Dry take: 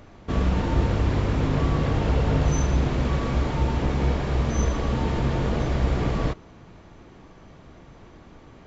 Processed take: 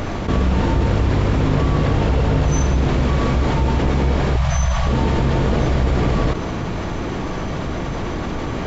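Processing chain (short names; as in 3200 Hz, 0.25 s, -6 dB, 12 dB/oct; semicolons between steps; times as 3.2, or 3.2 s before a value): 4.36–4.87 Chebyshev band-stop 170–630 Hz, order 3; fast leveller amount 70%; gain +2 dB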